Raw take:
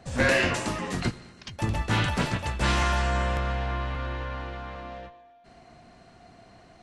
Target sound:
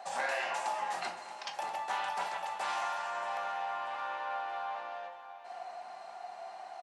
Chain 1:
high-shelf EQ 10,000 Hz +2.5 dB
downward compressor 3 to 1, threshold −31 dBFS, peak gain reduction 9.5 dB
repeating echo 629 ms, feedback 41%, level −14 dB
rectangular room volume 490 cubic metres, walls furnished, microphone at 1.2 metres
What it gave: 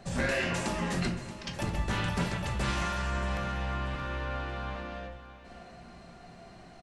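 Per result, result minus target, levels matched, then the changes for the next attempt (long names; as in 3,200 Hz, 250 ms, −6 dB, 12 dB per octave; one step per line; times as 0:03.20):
1,000 Hz band −8.0 dB; downward compressor: peak gain reduction −6 dB
add first: high-pass with resonance 800 Hz, resonance Q 5.3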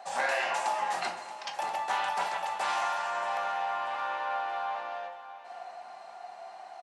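downward compressor: peak gain reduction −4.5 dB
change: downward compressor 3 to 1, threshold −38 dBFS, peak gain reduction 15.5 dB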